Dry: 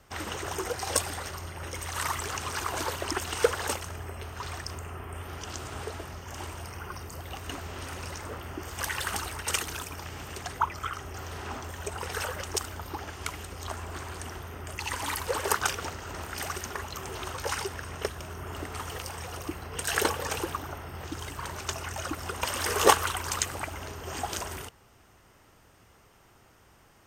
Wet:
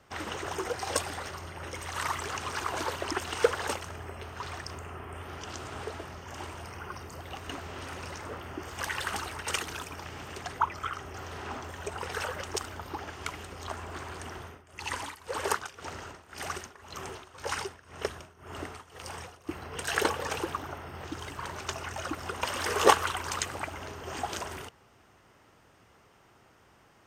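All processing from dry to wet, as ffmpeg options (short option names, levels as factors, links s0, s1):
-filter_complex "[0:a]asettb=1/sr,asplit=3[s0][s1][s2];[s0]atrim=end=14.404[s3];[s1]atrim=start=14.4:end=19.49,asetpts=PTS-STARTPTS,afade=t=in:d=0.004:c=qsin,afade=t=out:st=5.086:d=0.004:c=qsin,lowpass=12000,highshelf=f=8700:g=6.5,tremolo=f=1.9:d=0.87[s4];[s2]atrim=start=19.486[s5];[s3][s4]acrossfade=d=0.004:c1=hsin:c2=qsin[s6];[s6][s5]acrossfade=d=0.004:c1=qsin:c2=hsin,highpass=f=110:p=1,highshelf=f=7600:g=-11"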